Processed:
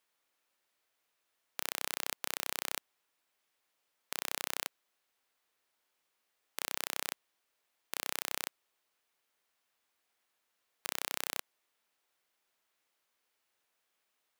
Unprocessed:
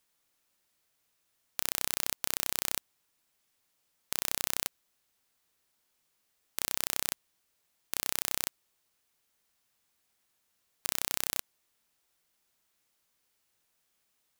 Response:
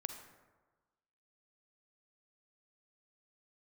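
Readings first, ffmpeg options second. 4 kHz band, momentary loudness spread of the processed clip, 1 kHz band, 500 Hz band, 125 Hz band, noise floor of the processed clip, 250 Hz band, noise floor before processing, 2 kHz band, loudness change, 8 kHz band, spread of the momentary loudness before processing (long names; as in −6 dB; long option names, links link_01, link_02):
−3.5 dB, 6 LU, 0.0 dB, −1.0 dB, −11.5 dB, −82 dBFS, −5.5 dB, −77 dBFS, −0.5 dB, −5.5 dB, −6.5 dB, 6 LU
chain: -af "bass=frequency=250:gain=-13,treble=frequency=4000:gain=-7"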